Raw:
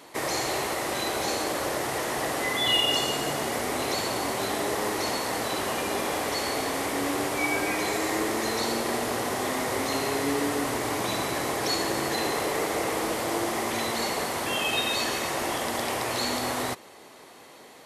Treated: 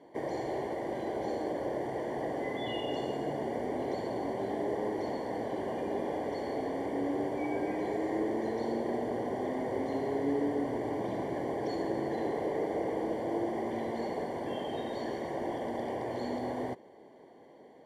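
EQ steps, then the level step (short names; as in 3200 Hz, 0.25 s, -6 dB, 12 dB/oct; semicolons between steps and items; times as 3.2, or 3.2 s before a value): running mean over 34 samples; low shelf 120 Hz -10.5 dB; 0.0 dB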